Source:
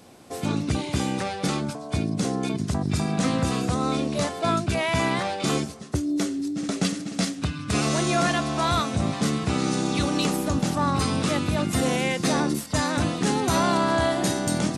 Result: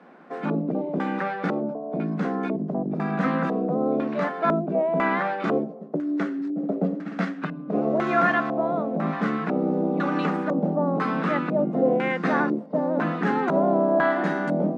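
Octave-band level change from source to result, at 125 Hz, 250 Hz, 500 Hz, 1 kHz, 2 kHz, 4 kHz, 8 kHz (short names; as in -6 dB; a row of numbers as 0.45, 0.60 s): -5.0 dB, 0.0 dB, +4.0 dB, +0.5 dB, +1.0 dB, -16.0 dB, under -25 dB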